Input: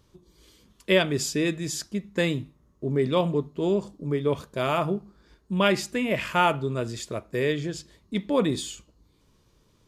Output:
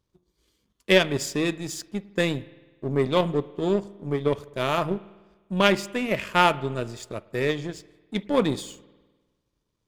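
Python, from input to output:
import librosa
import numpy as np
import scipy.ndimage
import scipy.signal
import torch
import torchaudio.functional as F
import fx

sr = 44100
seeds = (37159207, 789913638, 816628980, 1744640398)

y = fx.power_curve(x, sr, exponent=1.4)
y = fx.rev_spring(y, sr, rt60_s=1.3, pass_ms=(50,), chirp_ms=35, drr_db=19.0)
y = y * 10.0 ** (5.5 / 20.0)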